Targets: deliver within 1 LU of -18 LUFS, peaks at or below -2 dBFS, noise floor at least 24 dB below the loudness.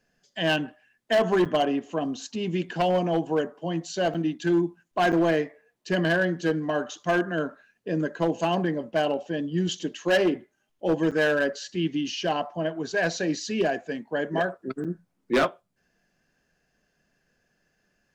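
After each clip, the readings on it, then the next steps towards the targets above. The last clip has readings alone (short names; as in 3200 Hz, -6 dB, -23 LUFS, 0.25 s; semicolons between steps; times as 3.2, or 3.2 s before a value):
clipped 1.3%; flat tops at -16.5 dBFS; dropouts 5; longest dropout 7.2 ms; loudness -26.5 LUFS; peak -16.5 dBFS; loudness target -18.0 LUFS
-> clip repair -16.5 dBFS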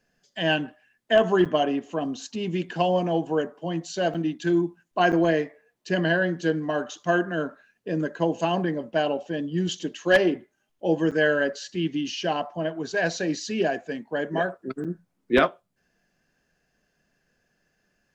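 clipped 0.0%; dropouts 5; longest dropout 7.2 ms
-> interpolate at 1.45/4.14/5.12/11.11/14.84, 7.2 ms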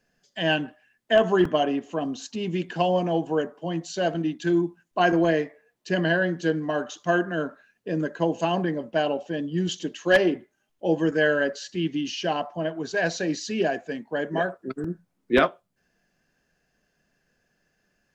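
dropouts 0; loudness -25.5 LUFS; peak -7.5 dBFS; loudness target -18.0 LUFS
-> gain +7.5 dB; limiter -2 dBFS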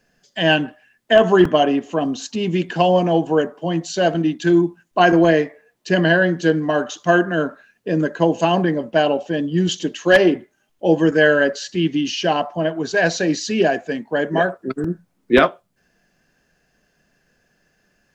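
loudness -18.5 LUFS; peak -2.0 dBFS; noise floor -66 dBFS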